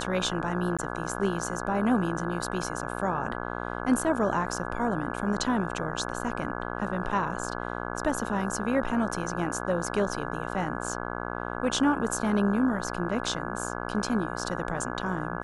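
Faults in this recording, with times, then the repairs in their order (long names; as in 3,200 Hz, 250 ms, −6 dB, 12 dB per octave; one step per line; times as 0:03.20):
mains buzz 60 Hz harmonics 28 −34 dBFS
0:00.77–0:00.79: drop-out 16 ms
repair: hum removal 60 Hz, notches 28
repair the gap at 0:00.77, 16 ms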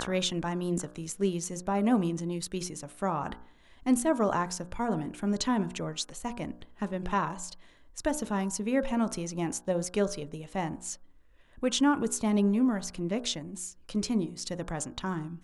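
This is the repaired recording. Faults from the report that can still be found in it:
none of them is left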